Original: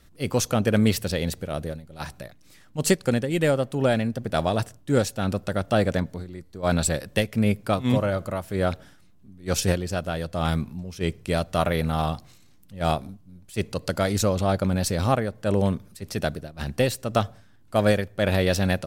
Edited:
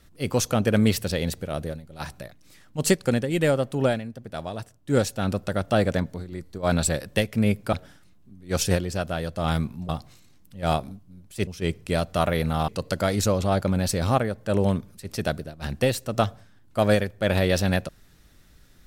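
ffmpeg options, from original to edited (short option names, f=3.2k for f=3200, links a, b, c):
-filter_complex "[0:a]asplit=9[a][b][c][d][e][f][g][h][i];[a]atrim=end=4.01,asetpts=PTS-STARTPTS,afade=t=out:st=3.86:d=0.15:silence=0.334965[j];[b]atrim=start=4.01:end=4.8,asetpts=PTS-STARTPTS,volume=-9.5dB[k];[c]atrim=start=4.8:end=6.322,asetpts=PTS-STARTPTS,afade=t=in:d=0.15:silence=0.334965[l];[d]atrim=start=6.318:end=6.582,asetpts=PTS-STARTPTS,volume=4dB[m];[e]atrim=start=6.578:end=7.732[n];[f]atrim=start=8.698:end=10.862[o];[g]atrim=start=12.068:end=13.652[p];[h]atrim=start=10.858:end=12.072[q];[i]atrim=start=13.648[r];[j][k][l]concat=n=3:v=0:a=1[s];[s][m]acrossfade=d=0.004:c1=hsin:c2=hsin[t];[t][n]acrossfade=d=0.004:c1=hsin:c2=hsin[u];[u][o]acrossfade=d=0.004:c1=hsin:c2=hsin[v];[v][p]acrossfade=d=0.004:c1=hsin:c2=hsin[w];[w][q]acrossfade=d=0.004:c1=hsin:c2=hsin[x];[x][r]acrossfade=d=0.004:c1=hsin:c2=hsin"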